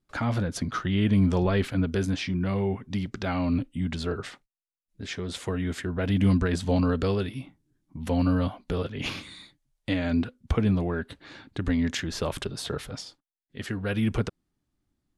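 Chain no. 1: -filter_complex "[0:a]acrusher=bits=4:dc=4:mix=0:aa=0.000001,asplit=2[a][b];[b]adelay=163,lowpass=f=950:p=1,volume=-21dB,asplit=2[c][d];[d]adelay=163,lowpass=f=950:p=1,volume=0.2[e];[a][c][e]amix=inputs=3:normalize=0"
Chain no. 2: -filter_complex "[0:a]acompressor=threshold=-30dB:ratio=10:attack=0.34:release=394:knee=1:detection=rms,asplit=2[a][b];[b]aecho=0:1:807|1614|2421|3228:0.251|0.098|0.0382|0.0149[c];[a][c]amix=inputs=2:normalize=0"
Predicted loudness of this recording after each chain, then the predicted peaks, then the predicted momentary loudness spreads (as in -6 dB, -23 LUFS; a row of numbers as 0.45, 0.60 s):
-28.5, -39.0 LUFS; -11.0, -25.0 dBFS; 19, 10 LU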